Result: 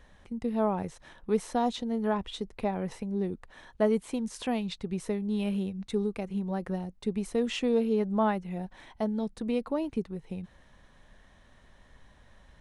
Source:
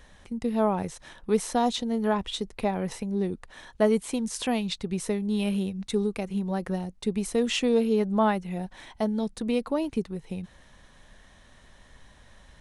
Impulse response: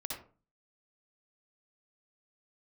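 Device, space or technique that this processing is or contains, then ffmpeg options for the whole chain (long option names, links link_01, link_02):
behind a face mask: -af "highshelf=frequency=3400:gain=-8,volume=-3dB"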